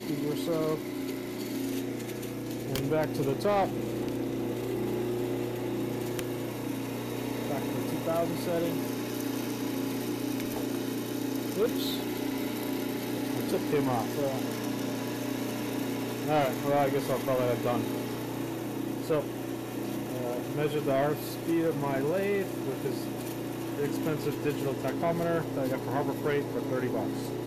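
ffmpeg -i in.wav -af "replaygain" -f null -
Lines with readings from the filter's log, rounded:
track_gain = +11.9 dB
track_peak = 0.070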